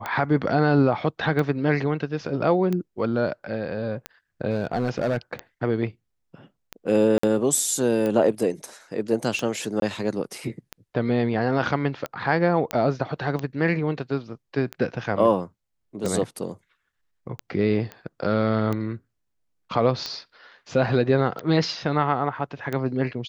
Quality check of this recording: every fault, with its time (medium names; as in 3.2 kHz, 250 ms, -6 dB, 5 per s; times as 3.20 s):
tick 45 rpm -15 dBFS
4.50–5.33 s: clipped -18.5 dBFS
7.18–7.23 s: dropout 54 ms
9.80–9.82 s: dropout 22 ms
12.71 s: pop -11 dBFS
17.92 s: pop -21 dBFS